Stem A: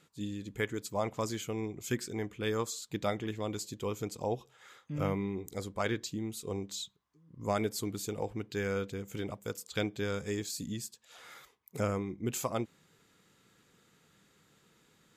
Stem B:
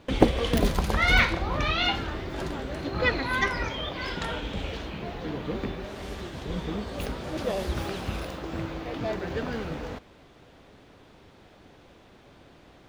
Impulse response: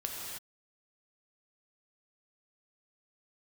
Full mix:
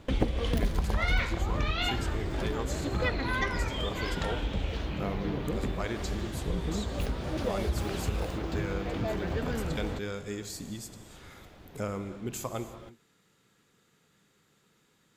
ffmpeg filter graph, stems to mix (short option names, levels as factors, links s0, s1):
-filter_complex "[0:a]volume=0.596,asplit=2[s0][s1];[s1]volume=0.398[s2];[1:a]lowshelf=f=120:g=9.5,volume=0.841[s3];[2:a]atrim=start_sample=2205[s4];[s2][s4]afir=irnorm=-1:irlink=0[s5];[s0][s3][s5]amix=inputs=3:normalize=0,acompressor=threshold=0.0447:ratio=2.5"